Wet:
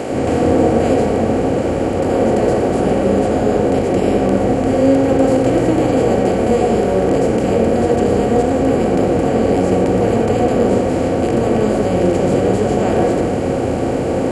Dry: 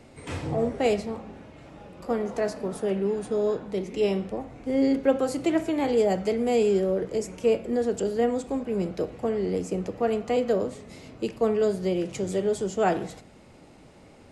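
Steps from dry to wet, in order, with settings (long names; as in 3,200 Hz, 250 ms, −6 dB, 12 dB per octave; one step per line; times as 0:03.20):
compressor on every frequency bin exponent 0.2
on a send: RIAA equalisation playback + convolution reverb RT60 0.55 s, pre-delay 87 ms, DRR 1.5 dB
on the sum: level −4.5 dB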